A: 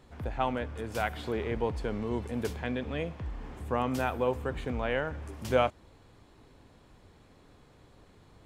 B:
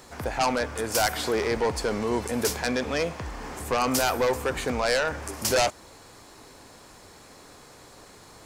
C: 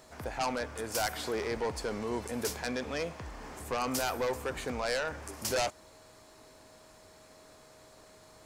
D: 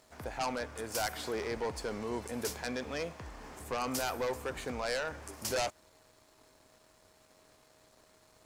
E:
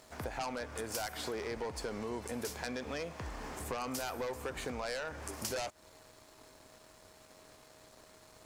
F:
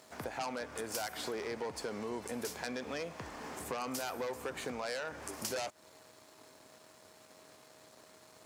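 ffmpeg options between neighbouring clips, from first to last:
ffmpeg -i in.wav -filter_complex "[0:a]asplit=2[link_01][link_02];[link_02]highpass=frequency=720:poles=1,volume=14dB,asoftclip=type=tanh:threshold=-10.5dB[link_03];[link_01][link_03]amix=inputs=2:normalize=0,lowpass=frequency=3300:poles=1,volume=-6dB,aeval=exprs='0.299*sin(PI/2*2.82*val(0)/0.299)':channel_layout=same,aexciter=amount=5.2:drive=5:freq=4700,volume=-8dB" out.wav
ffmpeg -i in.wav -af "aeval=exprs='val(0)+0.00282*sin(2*PI*630*n/s)':channel_layout=same,volume=-8dB" out.wav
ffmpeg -i in.wav -af "aeval=exprs='sgn(val(0))*max(abs(val(0))-0.00106,0)':channel_layout=same,volume=-2dB" out.wav
ffmpeg -i in.wav -af "acompressor=threshold=-41dB:ratio=6,volume=5dB" out.wav
ffmpeg -i in.wav -af "highpass=130" out.wav

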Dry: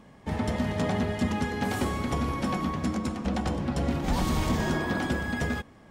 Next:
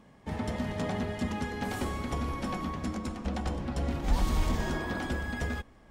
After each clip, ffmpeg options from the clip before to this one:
ffmpeg -i in.wav -af "asubboost=boost=4.5:cutoff=59,volume=-4.5dB" out.wav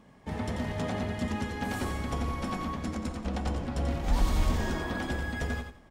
ffmpeg -i in.wav -af "aecho=1:1:88|176|264:0.447|0.107|0.0257" out.wav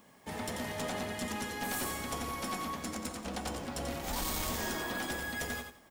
ffmpeg -i in.wav -af "aemphasis=mode=production:type=bsi,aeval=exprs='clip(val(0),-1,0.0237)':channel_layout=same,volume=-1dB" out.wav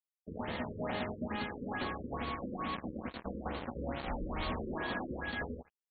ffmpeg -i in.wav -af "acrusher=bits=5:mix=0:aa=0.5,afftfilt=real='re*lt(b*sr/1024,530*pow(4600/530,0.5+0.5*sin(2*PI*2.3*pts/sr)))':imag='im*lt(b*sr/1024,530*pow(4600/530,0.5+0.5*sin(2*PI*2.3*pts/sr)))':win_size=1024:overlap=0.75" out.wav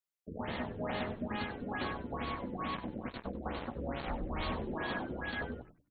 ffmpeg -i in.wav -filter_complex "[0:a]asplit=4[link_01][link_02][link_03][link_04];[link_02]adelay=96,afreqshift=-120,volume=-13dB[link_05];[link_03]adelay=192,afreqshift=-240,volume=-23.2dB[link_06];[link_04]adelay=288,afreqshift=-360,volume=-33.3dB[link_07];[link_01][link_05][link_06][link_07]amix=inputs=4:normalize=0" out.wav

